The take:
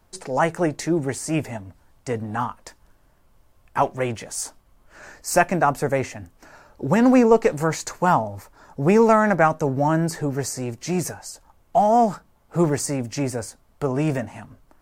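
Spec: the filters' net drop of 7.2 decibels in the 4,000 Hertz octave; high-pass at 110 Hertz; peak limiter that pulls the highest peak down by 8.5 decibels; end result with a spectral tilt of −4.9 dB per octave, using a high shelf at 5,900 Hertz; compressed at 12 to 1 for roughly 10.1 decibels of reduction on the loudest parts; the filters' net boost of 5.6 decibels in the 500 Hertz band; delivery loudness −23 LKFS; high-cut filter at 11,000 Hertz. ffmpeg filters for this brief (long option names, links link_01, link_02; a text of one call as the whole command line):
ffmpeg -i in.wav -af "highpass=110,lowpass=11000,equalizer=frequency=500:width_type=o:gain=7,equalizer=frequency=4000:width_type=o:gain=-7,highshelf=frequency=5900:gain=-7,acompressor=threshold=-14dB:ratio=12,volume=1.5dB,alimiter=limit=-11dB:level=0:latency=1" out.wav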